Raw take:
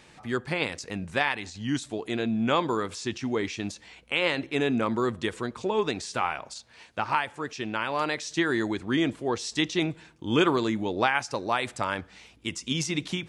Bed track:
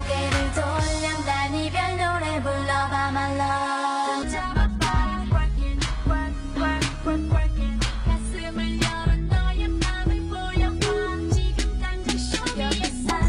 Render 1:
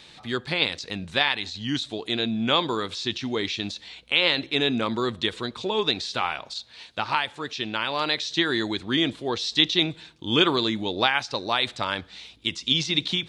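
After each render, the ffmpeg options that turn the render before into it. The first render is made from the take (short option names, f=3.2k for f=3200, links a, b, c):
-filter_complex "[0:a]acrossover=split=5700[a][b];[b]acompressor=threshold=-53dB:ratio=4:attack=1:release=60[c];[a][c]amix=inputs=2:normalize=0,equalizer=f=3.8k:w=1.9:g=15"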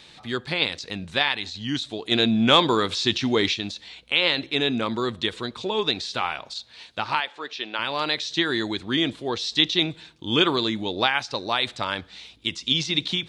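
-filter_complex "[0:a]asettb=1/sr,asplit=3[a][b][c];[a]atrim=end=2.114[d];[b]atrim=start=2.11:end=3.54,asetpts=PTS-STARTPTS,afade=t=in:d=0.004:c=qsin,afade=t=out:st=1.426:d=0.004:c=qsin,acontrast=51[e];[c]atrim=start=3.536[f];[d][e]acrossfade=d=0.004:c1=hsin:c2=qsin[g];[g][f]acrossfade=d=0.004:c1=qsin:c2=hsin,asettb=1/sr,asplit=3[h][i][j];[h]atrim=end=7.204[k];[i]atrim=start=7.2:end=7.79,asetpts=PTS-STARTPTS,afade=t=in:d=0.004:c=qsin,afade=t=out:st=0.586:d=0.004:c=qsin,highpass=390,lowpass=4.9k[l];[j]atrim=start=7.786[m];[k][l]acrossfade=d=0.004:c1=hsin:c2=qsin[n];[n][m]acrossfade=d=0.004:c1=qsin:c2=hsin"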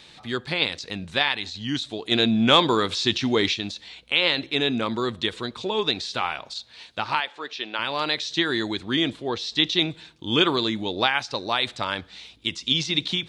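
-filter_complex "[0:a]asettb=1/sr,asplit=3[a][b][c];[a]atrim=end=9.174[d];[b]atrim=start=9.17:end=9.65,asetpts=PTS-STARTPTS,afade=t=in:d=0.004:c=qsin,afade=t=out:st=0.476:d=0.004:c=qsin,highshelf=f=6.2k:g=-8[e];[c]atrim=start=9.646[f];[d][e]acrossfade=d=0.004:c1=hsin:c2=qsin[g];[g][f]acrossfade=d=0.004:c1=qsin:c2=hsin"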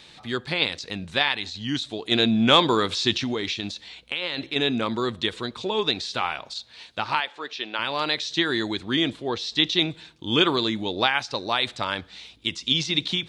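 -filter_complex "[0:a]asettb=1/sr,asplit=3[a][b][c];[a]atrim=end=3.234[d];[b]atrim=start=3.23:end=4.56,asetpts=PTS-STARTPTS,afade=t=in:d=0.004:c=qsin,afade=t=out:st=1.326:d=0.004:c=qsin,acompressor=threshold=-23dB:ratio=6:attack=3.2:release=140:knee=1:detection=peak[e];[c]atrim=start=4.556[f];[d][e]acrossfade=d=0.004:c1=hsin:c2=qsin[g];[g][f]acrossfade=d=0.004:c1=qsin:c2=hsin"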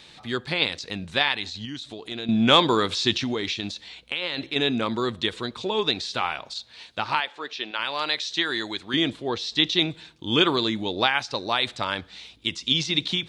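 -filter_complex "[0:a]asettb=1/sr,asplit=3[a][b][c];[a]atrim=end=1.654[d];[b]atrim=start=1.65:end=2.29,asetpts=PTS-STARTPTS,afade=t=in:d=0.004:c=qsin,afade=t=out:st=0.636:d=0.004:c=qsin,acompressor=threshold=-35dB:ratio=2.5:attack=3.2:release=140:knee=1:detection=peak[e];[c]atrim=start=2.286[f];[d][e]acrossfade=d=0.004:c1=hsin:c2=qsin[g];[g][f]acrossfade=d=0.004:c1=qsin:c2=hsin,asettb=1/sr,asplit=3[h][i][j];[h]atrim=end=7.714[k];[i]atrim=start=7.71:end=8.94,asetpts=PTS-STARTPTS,afade=t=in:d=0.004:c=qsin,afade=t=out:st=1.226:d=0.004:c=qsin,lowshelf=f=390:g=-10.5[l];[j]atrim=start=8.936[m];[k][l]acrossfade=d=0.004:c1=hsin:c2=qsin[n];[n][m]acrossfade=d=0.004:c1=qsin:c2=hsin"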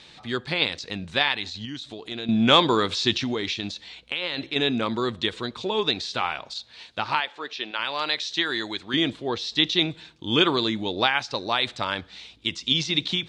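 -af "lowpass=8.3k"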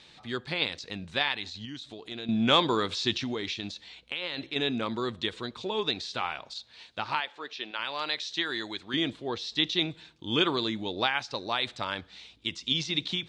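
-af "volume=-5.5dB"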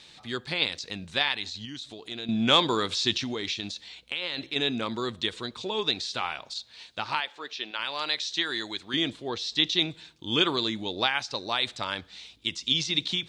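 -af "highshelf=f=4.8k:g=9.5"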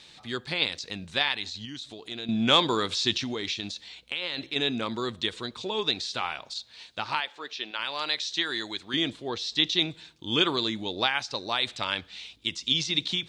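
-filter_complex "[0:a]asettb=1/sr,asplit=3[a][b][c];[a]atrim=end=11.714[d];[b]atrim=start=11.71:end=12.33,asetpts=PTS-STARTPTS,afade=t=in:d=0.004:c=qsin,afade=t=out:st=0.616:d=0.004:c=qsin,equalizer=f=2.7k:t=o:w=0.8:g=6[e];[c]atrim=start=12.326[f];[d][e]acrossfade=d=0.004:c1=hsin:c2=qsin[g];[g][f]acrossfade=d=0.004:c1=qsin:c2=hsin"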